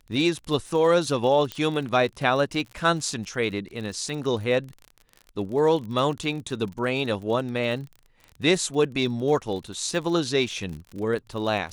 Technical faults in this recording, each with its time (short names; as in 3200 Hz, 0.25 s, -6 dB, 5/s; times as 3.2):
crackle 42/s -33 dBFS
1.52 pop -15 dBFS